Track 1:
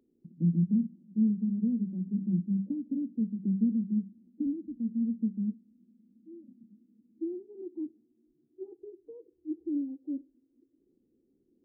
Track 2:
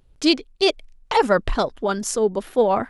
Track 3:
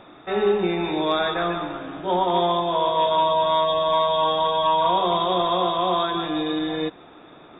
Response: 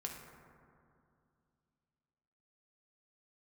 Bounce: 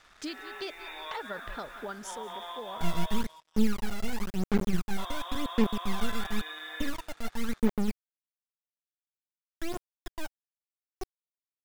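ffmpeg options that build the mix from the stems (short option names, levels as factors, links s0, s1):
-filter_complex "[0:a]acrusher=bits=3:dc=4:mix=0:aa=0.000001,aphaser=in_gain=1:out_gain=1:delay=1.5:decay=0.72:speed=0.94:type=sinusoidal,adelay=2400,volume=0.794[s0];[1:a]volume=0.224,afade=t=out:st=2.03:d=0.21:silence=0.354813,asplit=2[s1][s2];[s2]volume=0.075[s3];[2:a]highpass=1100,acompressor=threshold=0.0447:ratio=6,volume=0.299,asplit=3[s4][s5][s6];[s4]atrim=end=3.22,asetpts=PTS-STARTPTS,afade=t=out:st=3.216:d=0.004:c=hsin[s7];[s5]atrim=start=3.22:end=4.98,asetpts=PTS-STARTPTS,volume=0[s8];[s6]atrim=start=4.98,asetpts=PTS-STARTPTS,afade=t=in:d=0.004:c=hsin[s9];[s7][s8][s9]concat=n=3:v=0:a=1,asplit=2[s10][s11];[s11]volume=0.178[s12];[s1][s10]amix=inputs=2:normalize=0,equalizer=f=1700:w=1.8:g=9.5,acompressor=threshold=0.0178:ratio=6,volume=1[s13];[s3][s12]amix=inputs=2:normalize=0,aecho=0:1:182|364|546|728|910|1092:1|0.41|0.168|0.0689|0.0283|0.0116[s14];[s0][s13][s14]amix=inputs=3:normalize=0,acrusher=bits=8:mix=0:aa=0.5"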